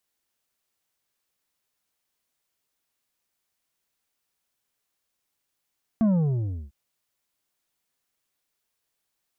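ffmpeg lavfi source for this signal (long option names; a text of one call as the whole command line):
ffmpeg -f lavfi -i "aevalsrc='0.126*clip((0.7-t)/0.68,0,1)*tanh(2.24*sin(2*PI*230*0.7/log(65/230)*(exp(log(65/230)*t/0.7)-1)))/tanh(2.24)':duration=0.7:sample_rate=44100" out.wav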